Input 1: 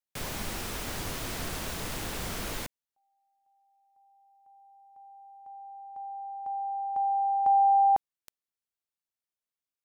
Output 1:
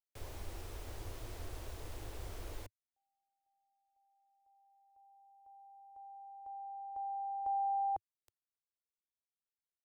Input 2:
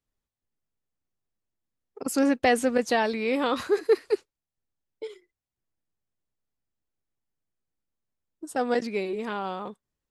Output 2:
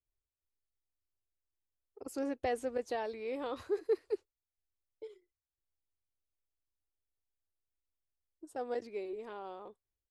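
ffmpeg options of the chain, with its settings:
-af "firequalizer=gain_entry='entry(100,0);entry(160,-21);entry(340,-5);entry(1400,-13)':delay=0.05:min_phase=1,volume=-4.5dB"

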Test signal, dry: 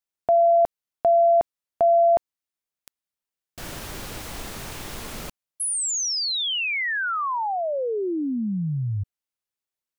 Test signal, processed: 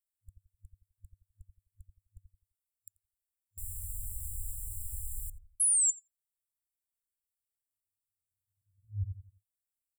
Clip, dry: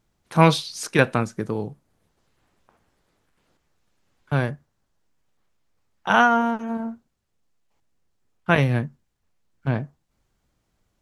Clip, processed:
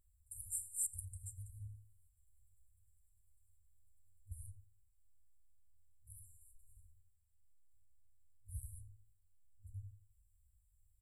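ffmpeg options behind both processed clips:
-filter_complex "[0:a]asplit=2[a][b];[b]adelay=86,lowpass=f=990:p=1,volume=-6dB,asplit=2[c][d];[d]adelay=86,lowpass=f=990:p=1,volume=0.33,asplit=2[e][f];[f]adelay=86,lowpass=f=990:p=1,volume=0.33,asplit=2[g][h];[h]adelay=86,lowpass=f=990:p=1,volume=0.33[i];[a][c][e][g][i]amix=inputs=5:normalize=0,afftfilt=real='re*(1-between(b*sr/4096,100,7200))':imag='im*(1-between(b*sr/4096,100,7200))':win_size=4096:overlap=0.75"

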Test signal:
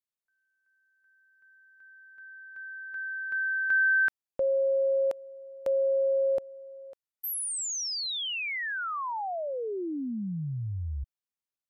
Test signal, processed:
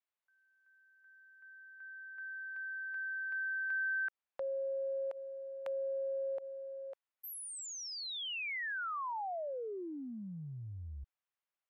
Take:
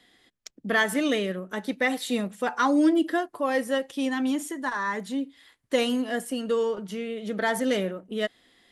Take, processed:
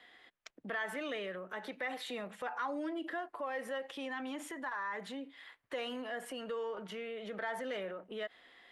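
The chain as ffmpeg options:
-filter_complex "[0:a]acrossover=split=490 3100:gain=0.178 1 0.141[a][b][c];[a][b][c]amix=inputs=3:normalize=0,acompressor=threshold=-47dB:ratio=2.5:attack=1.9:release=40:knee=1:detection=rms,volume=4.5dB"

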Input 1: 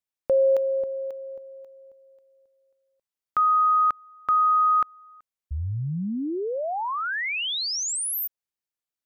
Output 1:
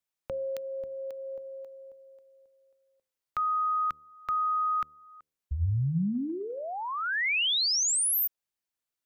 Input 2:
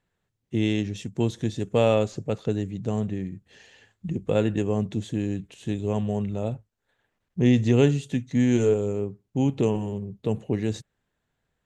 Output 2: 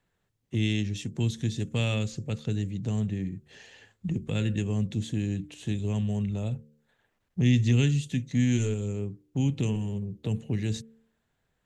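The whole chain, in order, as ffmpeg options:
-filter_complex "[0:a]bandreject=f=74.9:t=h:w=4,bandreject=f=149.8:t=h:w=4,bandreject=f=224.7:t=h:w=4,bandreject=f=299.6:t=h:w=4,bandreject=f=374.5:t=h:w=4,bandreject=f=449.4:t=h:w=4,bandreject=f=524.3:t=h:w=4,acrossover=split=220|1800[a][b][c];[b]acompressor=threshold=-35dB:ratio=10:attack=0.8:release=837:knee=2.83:detection=peak[d];[a][d][c]amix=inputs=3:normalize=0,volume=1.5dB"

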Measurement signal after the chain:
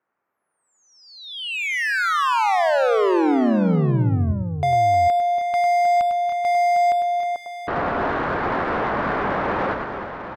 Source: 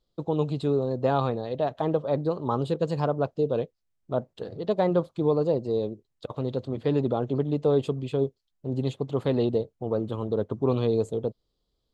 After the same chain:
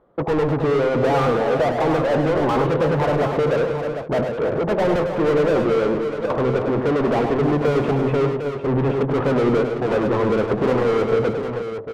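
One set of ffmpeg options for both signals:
-filter_complex "[0:a]lowpass=f=1.7k:w=0.5412,lowpass=f=1.7k:w=1.3066,asplit=2[a][b];[b]highpass=f=720:p=1,volume=38dB,asoftclip=type=tanh:threshold=-11dB[c];[a][c]amix=inputs=2:normalize=0,lowpass=f=1.3k:p=1,volume=-6dB,aecho=1:1:101|116|313|433|754:0.447|0.119|0.335|0.158|0.376,volume=-1.5dB"

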